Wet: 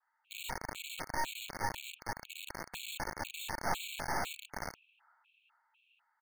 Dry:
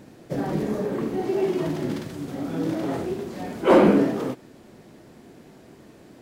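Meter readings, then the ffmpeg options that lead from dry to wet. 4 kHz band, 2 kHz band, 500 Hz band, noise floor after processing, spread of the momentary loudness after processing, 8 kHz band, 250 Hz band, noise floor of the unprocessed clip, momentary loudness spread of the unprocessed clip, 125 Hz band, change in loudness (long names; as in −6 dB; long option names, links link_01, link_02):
−1.0 dB, −4.0 dB, −24.5 dB, −79 dBFS, 8 LU, can't be measured, −28.0 dB, −50 dBFS, 15 LU, −18.5 dB, −16.0 dB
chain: -filter_complex "[0:a]adynamicequalizer=threshold=0.002:dfrequency=1800:dqfactor=5.4:tfrequency=1800:tqfactor=5.4:attack=5:release=100:ratio=0.375:range=2.5:mode=cutabove:tftype=bell,acrossover=split=790|1800[link_01][link_02][link_03];[link_01]acompressor=threshold=-30dB:ratio=4[link_04];[link_02]acompressor=threshold=-38dB:ratio=4[link_05];[link_03]acompressor=threshold=-54dB:ratio=4[link_06];[link_04][link_05][link_06]amix=inputs=3:normalize=0,asplit=3[link_07][link_08][link_09];[link_07]bandpass=frequency=730:width_type=q:width=8,volume=0dB[link_10];[link_08]bandpass=frequency=1090:width_type=q:width=8,volume=-6dB[link_11];[link_09]bandpass=frequency=2440:width_type=q:width=8,volume=-9dB[link_12];[link_10][link_11][link_12]amix=inputs=3:normalize=0,asplit=2[link_13][link_14];[link_14]aecho=0:1:452|904|1356|1808|2260|2712:0.631|0.278|0.122|0.0537|0.0236|0.0104[link_15];[link_13][link_15]amix=inputs=2:normalize=0,highpass=frequency=360:width_type=q:width=0.5412,highpass=frequency=360:width_type=q:width=1.307,lowpass=frequency=3100:width_type=q:width=0.5176,lowpass=frequency=3100:width_type=q:width=0.7071,lowpass=frequency=3100:width_type=q:width=1.932,afreqshift=180,acrossover=split=2100[link_16][link_17];[link_16]acrusher=bits=4:dc=4:mix=0:aa=0.000001[link_18];[link_18][link_17]amix=inputs=2:normalize=0,afftfilt=real='re*gt(sin(2*PI*2*pts/sr)*(1-2*mod(floor(b*sr/1024/2200),2)),0)':imag='im*gt(sin(2*PI*2*pts/sr)*(1-2*mod(floor(b*sr/1024/2200),2)),0)':win_size=1024:overlap=0.75,volume=9.5dB"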